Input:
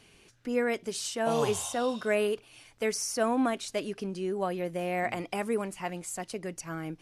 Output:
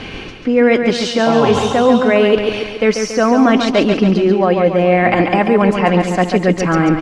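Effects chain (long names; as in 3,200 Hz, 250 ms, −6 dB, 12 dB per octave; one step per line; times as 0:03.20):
comb filter 3.8 ms, depth 32%
reversed playback
downward compressor 6 to 1, threshold −42 dBFS, peak gain reduction 19.5 dB
reversed playback
high-frequency loss of the air 230 metres
on a send: repeating echo 140 ms, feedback 54%, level −6.5 dB
on the sum: boost into a limiter +33 dB
level −1 dB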